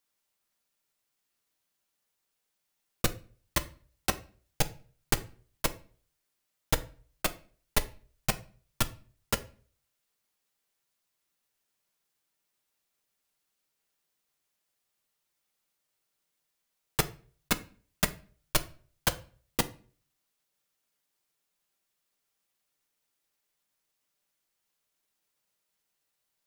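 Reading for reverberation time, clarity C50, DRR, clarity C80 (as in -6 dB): 0.40 s, 18.0 dB, 7.5 dB, 22.0 dB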